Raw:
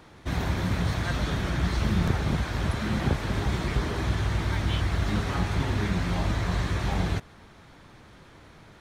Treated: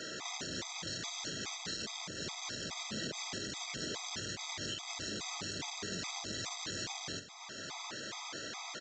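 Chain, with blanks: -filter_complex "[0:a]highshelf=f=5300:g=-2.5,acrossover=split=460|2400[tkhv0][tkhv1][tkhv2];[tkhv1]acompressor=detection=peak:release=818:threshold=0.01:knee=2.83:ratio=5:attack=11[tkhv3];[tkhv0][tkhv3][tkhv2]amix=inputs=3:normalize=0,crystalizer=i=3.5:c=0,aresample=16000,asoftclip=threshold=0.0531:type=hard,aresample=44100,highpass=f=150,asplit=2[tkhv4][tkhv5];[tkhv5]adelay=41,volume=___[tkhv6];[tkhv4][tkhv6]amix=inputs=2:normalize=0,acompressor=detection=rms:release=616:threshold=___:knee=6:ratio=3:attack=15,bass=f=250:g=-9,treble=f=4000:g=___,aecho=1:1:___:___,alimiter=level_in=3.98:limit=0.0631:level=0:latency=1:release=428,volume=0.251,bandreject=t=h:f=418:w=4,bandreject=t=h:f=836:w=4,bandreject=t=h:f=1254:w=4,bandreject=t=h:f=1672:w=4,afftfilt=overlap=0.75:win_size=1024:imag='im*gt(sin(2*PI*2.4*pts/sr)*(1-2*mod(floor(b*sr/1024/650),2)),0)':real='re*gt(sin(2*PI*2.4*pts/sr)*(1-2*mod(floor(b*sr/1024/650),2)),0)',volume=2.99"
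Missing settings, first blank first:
0.282, 0.0112, 6, 617, 0.106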